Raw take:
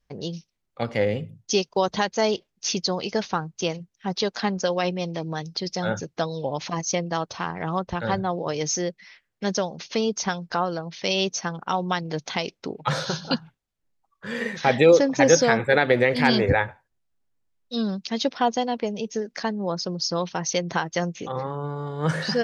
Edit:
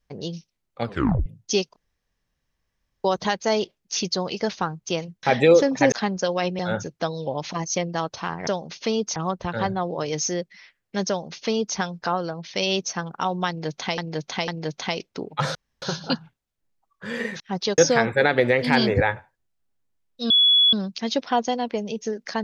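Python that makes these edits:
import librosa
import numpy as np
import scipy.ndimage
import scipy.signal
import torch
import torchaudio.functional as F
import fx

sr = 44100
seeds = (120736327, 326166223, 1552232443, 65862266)

y = fx.edit(x, sr, fx.tape_stop(start_s=0.86, length_s=0.4),
    fx.insert_room_tone(at_s=1.76, length_s=1.28),
    fx.swap(start_s=3.95, length_s=0.38, other_s=14.61, other_length_s=0.69),
    fx.cut(start_s=5.0, length_s=0.76),
    fx.duplicate(start_s=9.56, length_s=0.69, to_s=7.64),
    fx.repeat(start_s=11.96, length_s=0.5, count=3),
    fx.insert_room_tone(at_s=13.03, length_s=0.27),
    fx.insert_tone(at_s=17.82, length_s=0.43, hz=3390.0, db=-13.0), tone=tone)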